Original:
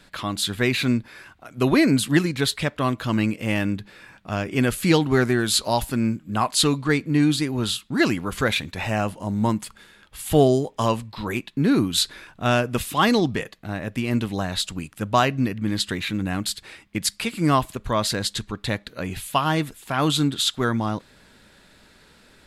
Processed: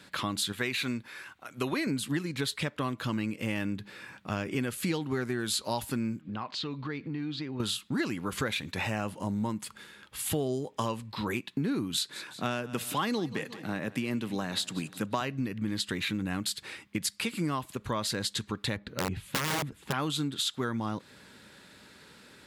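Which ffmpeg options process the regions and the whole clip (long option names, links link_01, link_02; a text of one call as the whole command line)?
ffmpeg -i in.wav -filter_complex "[0:a]asettb=1/sr,asplit=3[link_01][link_02][link_03];[link_01]atrim=end=0.524[link_04];[link_02]atrim=start=0.52:end=1.87,asetpts=PTS-STARTPTS,afade=type=in:duration=0.004:curve=qsin,afade=type=out:start_time=1.346:duration=0.004:curve=qsin,lowshelf=frequency=480:gain=-8.5,bandreject=frequency=4900:width=16[link_05];[link_03]atrim=start=1.866[link_06];[link_04][link_05]acrossfade=duration=0.004:curve1=hsin:curve2=qsin[link_07];[link_07][link_06]acrossfade=duration=0.004:curve1=qsin:curve2=hsin,asettb=1/sr,asplit=3[link_08][link_09][link_10];[link_08]atrim=end=6.214[link_11];[link_09]atrim=start=6.21:end=7.6,asetpts=PTS-STARTPTS,afade=type=in:duration=0.004:curve=qsin,afade=type=out:start_time=1.386:duration=0.004:curve=qsin,lowpass=frequency=4500:width=0.5412,lowpass=frequency=4500:width=1.3066,acompressor=threshold=-34dB:ratio=4:attack=3.2:release=140:knee=1:detection=peak[link_12];[link_10]atrim=start=7.596[link_13];[link_11][link_12]acrossfade=duration=0.004:curve1=hsin:curve2=qsin[link_14];[link_14][link_13]acrossfade=duration=0.004:curve1=qsin:curve2=hsin,asettb=1/sr,asplit=3[link_15][link_16][link_17];[link_15]atrim=end=11.944[link_18];[link_16]atrim=start=11.94:end=15.21,asetpts=PTS-STARTPTS,afade=type=in:duration=0.004:curve=qsin,afade=type=out:start_time=3.266:duration=0.004:curve=qsin,highpass=frequency=120:width=0.5412,highpass=frequency=120:width=1.3066,aecho=1:1:182|364|546:0.0944|0.0444|0.0209,atrim=end_sample=144207[link_19];[link_17]atrim=start=15.206[link_20];[link_18][link_19]acrossfade=duration=0.004:curve1=hsin:curve2=qsin[link_21];[link_21][link_20]acrossfade=duration=0.004:curve1=qsin:curve2=hsin,asettb=1/sr,asplit=3[link_22][link_23][link_24];[link_22]atrim=end=18.764[link_25];[link_23]atrim=start=18.76:end=19.93,asetpts=PTS-STARTPTS,afade=type=in:duration=0.004:curve=qsin,afade=type=out:start_time=1.166:duration=0.004:curve=qsin,lowpass=frequency=1800:poles=1,lowshelf=frequency=190:gain=11,aeval=exprs='(mod(5.96*val(0)+1,2)-1)/5.96':channel_layout=same[link_26];[link_24]atrim=start=19.926[link_27];[link_25][link_26]acrossfade=duration=0.004:curve1=hsin:curve2=qsin[link_28];[link_28][link_27]acrossfade=duration=0.004:curve1=qsin:curve2=hsin,equalizer=frequency=680:width=6.4:gain=-6.5,acompressor=threshold=-28dB:ratio=6,highpass=98" out.wav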